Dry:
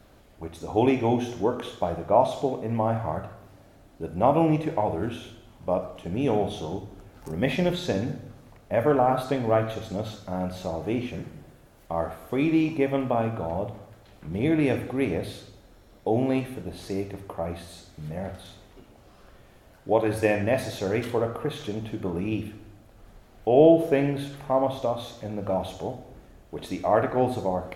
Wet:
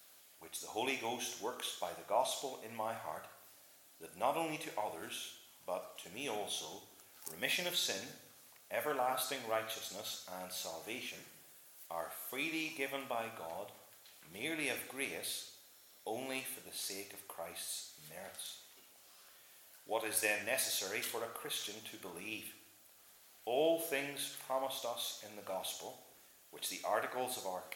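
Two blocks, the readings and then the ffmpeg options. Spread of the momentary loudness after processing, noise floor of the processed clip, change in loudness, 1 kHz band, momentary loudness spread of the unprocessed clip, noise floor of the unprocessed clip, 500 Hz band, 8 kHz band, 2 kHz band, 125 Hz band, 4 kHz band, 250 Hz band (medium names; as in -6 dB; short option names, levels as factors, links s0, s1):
22 LU, -63 dBFS, -13.5 dB, -12.5 dB, 16 LU, -54 dBFS, -16.5 dB, +6.5 dB, -4.5 dB, -28.5 dB, 0.0 dB, -22.0 dB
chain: -af "aderivative,volume=2"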